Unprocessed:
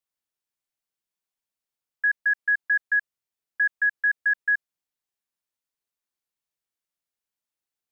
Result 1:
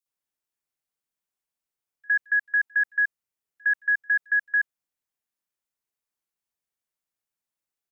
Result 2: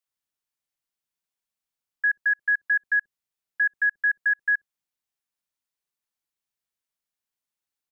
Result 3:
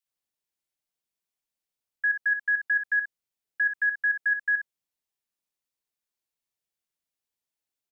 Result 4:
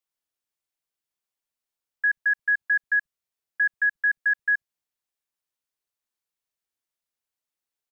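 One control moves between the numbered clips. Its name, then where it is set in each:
bands offset in time, split: 3900, 460, 1300, 180 Hz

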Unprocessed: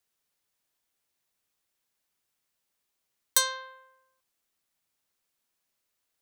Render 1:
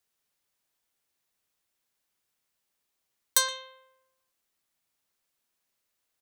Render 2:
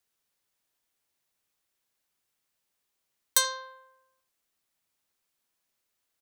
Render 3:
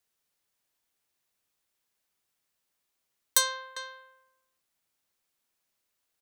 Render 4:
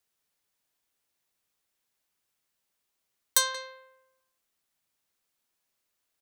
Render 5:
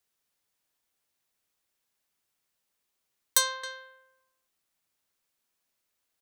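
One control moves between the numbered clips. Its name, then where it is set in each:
speakerphone echo, time: 120, 80, 400, 180, 270 ms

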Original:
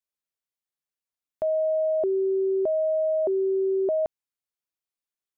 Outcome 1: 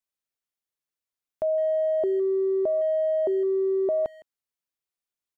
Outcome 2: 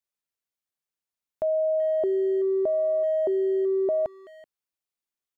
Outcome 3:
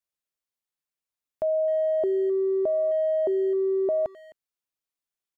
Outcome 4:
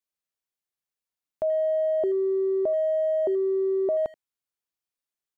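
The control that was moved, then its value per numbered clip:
speakerphone echo, time: 160, 380, 260, 80 ms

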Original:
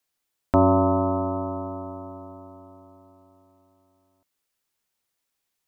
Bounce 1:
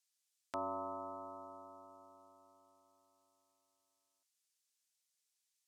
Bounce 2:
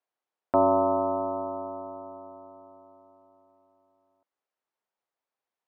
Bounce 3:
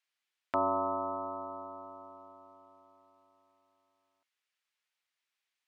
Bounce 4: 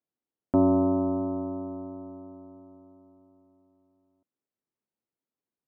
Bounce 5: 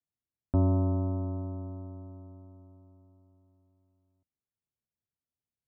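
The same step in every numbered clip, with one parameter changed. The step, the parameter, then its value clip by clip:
band-pass, frequency: 6800, 720, 2300, 260, 100 Hz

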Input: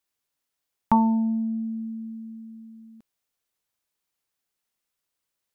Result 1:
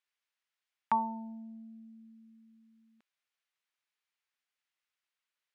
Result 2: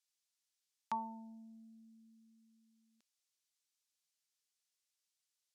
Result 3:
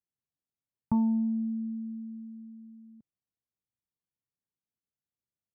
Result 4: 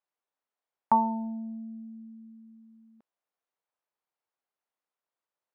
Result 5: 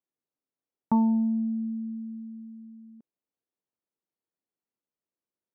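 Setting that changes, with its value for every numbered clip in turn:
band-pass, frequency: 2100, 5800, 120, 770, 300 Hz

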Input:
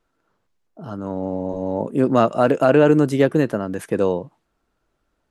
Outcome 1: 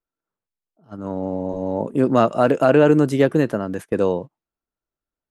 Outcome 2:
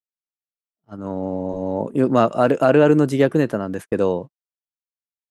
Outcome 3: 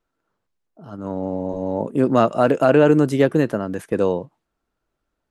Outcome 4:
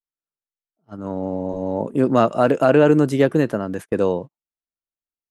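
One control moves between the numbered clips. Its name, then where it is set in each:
gate, range: -20, -53, -6, -35 dB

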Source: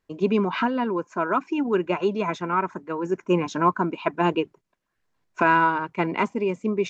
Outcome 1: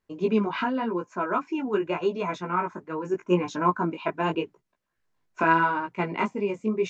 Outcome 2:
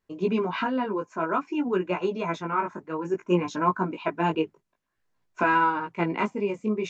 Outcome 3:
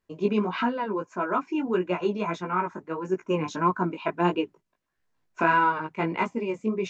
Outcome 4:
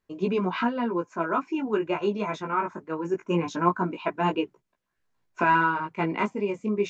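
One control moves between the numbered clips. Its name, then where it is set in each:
chorus, rate: 0.85, 0.54, 1.6, 0.22 Hz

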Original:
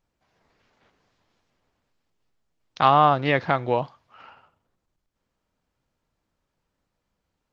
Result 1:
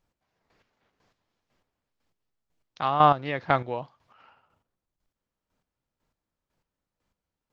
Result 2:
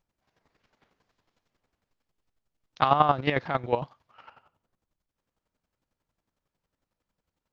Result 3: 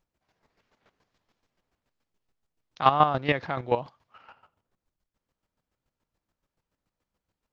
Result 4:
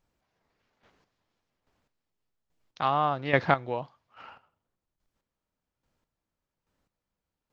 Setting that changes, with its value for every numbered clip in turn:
chopper, rate: 2, 11, 7, 1.2 Hz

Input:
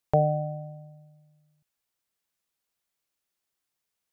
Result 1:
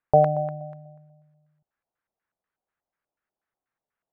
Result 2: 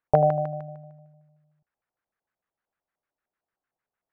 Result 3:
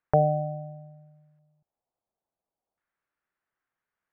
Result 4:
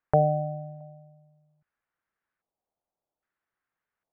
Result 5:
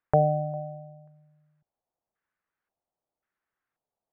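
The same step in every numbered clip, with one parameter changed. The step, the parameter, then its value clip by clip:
LFO low-pass, rate: 4.1, 6.6, 0.36, 0.62, 0.93 Hz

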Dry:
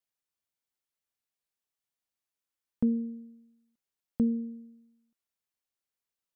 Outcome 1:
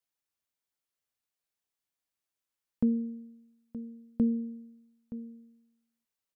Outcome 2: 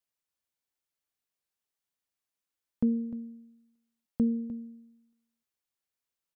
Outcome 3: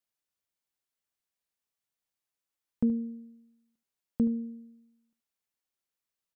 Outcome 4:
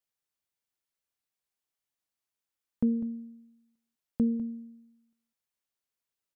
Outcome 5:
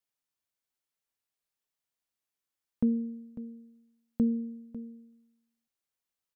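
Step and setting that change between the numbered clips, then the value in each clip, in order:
echo, time: 922, 302, 75, 200, 548 ms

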